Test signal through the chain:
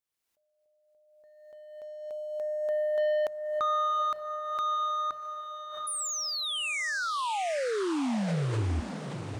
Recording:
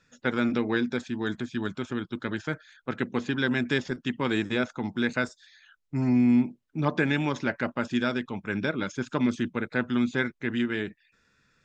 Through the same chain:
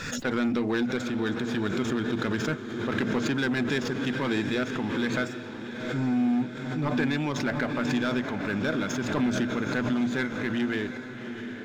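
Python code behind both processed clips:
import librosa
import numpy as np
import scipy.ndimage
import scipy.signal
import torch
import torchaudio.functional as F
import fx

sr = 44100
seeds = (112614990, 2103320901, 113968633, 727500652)

y = fx.hum_notches(x, sr, base_hz=60, count=3)
y = fx.leveller(y, sr, passes=1)
y = fx.rider(y, sr, range_db=5, speed_s=2.0)
y = 10.0 ** (-16.5 / 20.0) * np.tanh(y / 10.0 ** (-16.5 / 20.0))
y = fx.echo_diffused(y, sr, ms=752, feedback_pct=57, wet_db=-9.5)
y = fx.pre_swell(y, sr, db_per_s=42.0)
y = y * librosa.db_to_amplitude(-3.0)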